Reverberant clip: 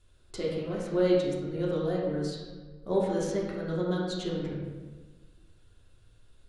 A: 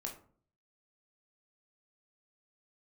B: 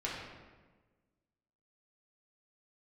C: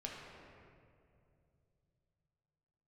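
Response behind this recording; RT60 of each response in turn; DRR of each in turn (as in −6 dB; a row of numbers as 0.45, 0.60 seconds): B; 0.50, 1.3, 2.6 seconds; 0.5, −6.5, −3.0 decibels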